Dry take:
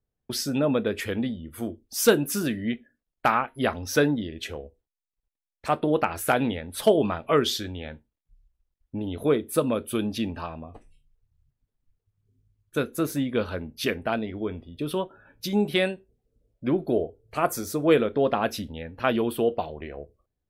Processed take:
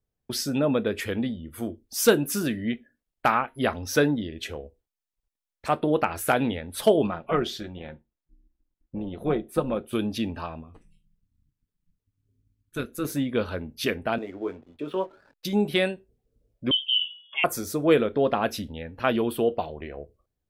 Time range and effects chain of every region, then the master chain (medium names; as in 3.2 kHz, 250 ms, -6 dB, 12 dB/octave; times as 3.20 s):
7.07–9.93 s: treble shelf 3.5 kHz -11 dB + AM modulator 280 Hz, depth 30% + comb 5.6 ms, depth 39%
10.61–13.05 s: peaking EQ 660 Hz -11.5 dB 0.74 oct + AM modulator 170 Hz, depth 40%
14.18–15.45 s: three-band isolator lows -16 dB, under 260 Hz, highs -22 dB, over 2.9 kHz + doubling 21 ms -9 dB + hysteresis with a dead band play -51 dBFS
16.71–17.44 s: spectral contrast enhancement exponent 1.7 + frequency inversion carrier 3.4 kHz + de-hum 172.5 Hz, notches 38
whole clip: none